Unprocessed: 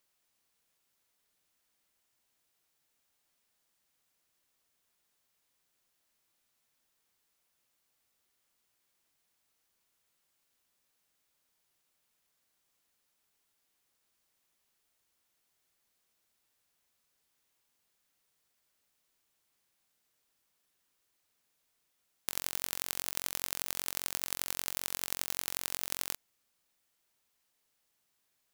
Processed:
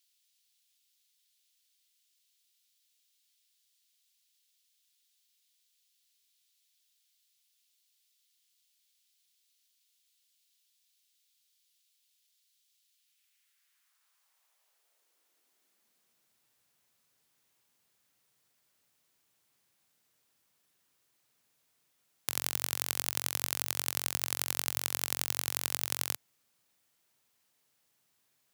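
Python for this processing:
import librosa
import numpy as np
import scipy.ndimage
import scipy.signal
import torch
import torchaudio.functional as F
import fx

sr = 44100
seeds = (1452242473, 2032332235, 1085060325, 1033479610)

y = fx.filter_sweep_highpass(x, sr, from_hz=3500.0, to_hz=110.0, start_s=12.89, end_s=16.51, q=1.6)
y = F.gain(torch.from_numpy(y), 3.0).numpy()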